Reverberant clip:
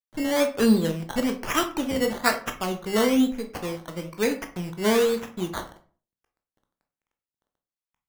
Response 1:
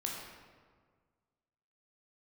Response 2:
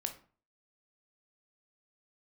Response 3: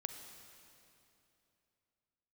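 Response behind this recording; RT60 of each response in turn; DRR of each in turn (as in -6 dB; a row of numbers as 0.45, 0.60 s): 2; 1.7, 0.40, 2.9 s; -2.0, 5.5, 6.5 dB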